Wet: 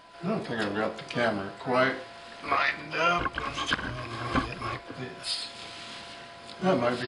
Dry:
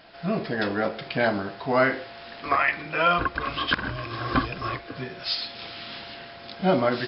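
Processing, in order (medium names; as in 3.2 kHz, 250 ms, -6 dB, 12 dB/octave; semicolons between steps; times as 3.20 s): harmony voices -5 st -15 dB, +12 st -11 dB; whistle 1 kHz -49 dBFS; trim -4 dB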